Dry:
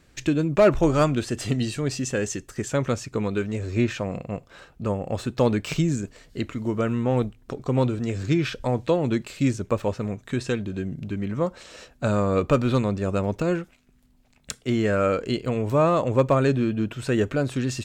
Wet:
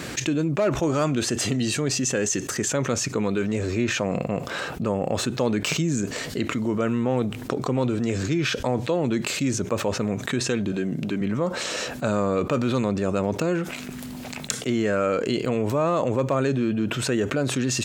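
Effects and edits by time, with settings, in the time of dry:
10.72–11.21 s: Bessel high-pass 210 Hz
whole clip: high-pass 140 Hz 12 dB/octave; dynamic bell 6.4 kHz, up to +5 dB, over -56 dBFS, Q 4.9; level flattener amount 70%; trim -6.5 dB

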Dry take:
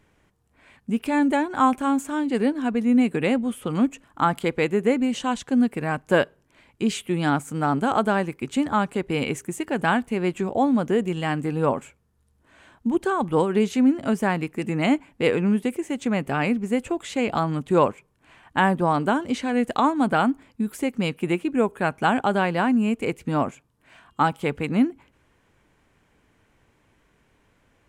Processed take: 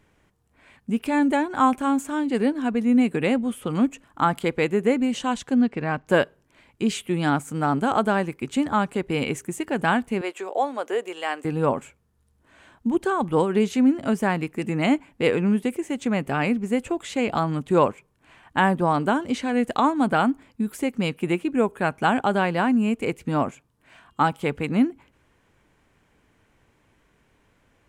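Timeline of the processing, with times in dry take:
5.54–6.08 s: low-pass 5.7 kHz 24 dB/octave
10.21–11.45 s: high-pass 420 Hz 24 dB/octave

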